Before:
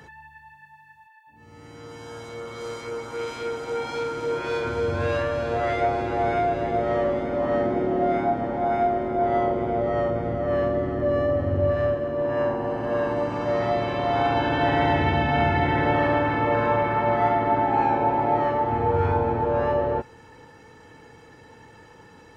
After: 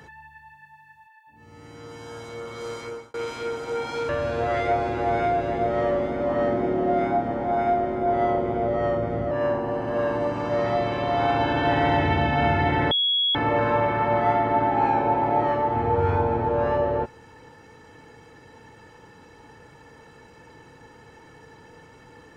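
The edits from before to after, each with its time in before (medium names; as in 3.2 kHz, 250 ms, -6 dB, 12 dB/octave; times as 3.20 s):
2.84–3.14 s: fade out
4.09–5.22 s: delete
10.44–12.27 s: delete
15.87–16.31 s: bleep 3.34 kHz -19 dBFS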